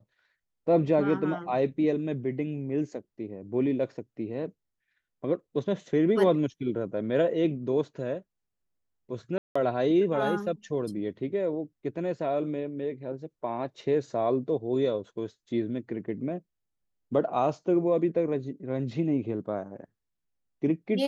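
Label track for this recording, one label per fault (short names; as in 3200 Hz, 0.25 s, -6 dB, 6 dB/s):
9.380000	9.550000	gap 0.175 s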